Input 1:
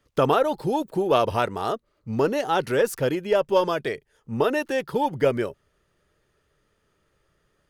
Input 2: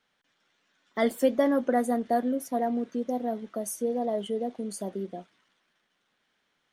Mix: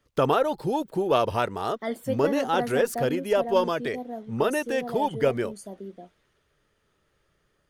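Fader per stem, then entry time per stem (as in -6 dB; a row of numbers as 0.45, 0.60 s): -2.0, -5.5 dB; 0.00, 0.85 s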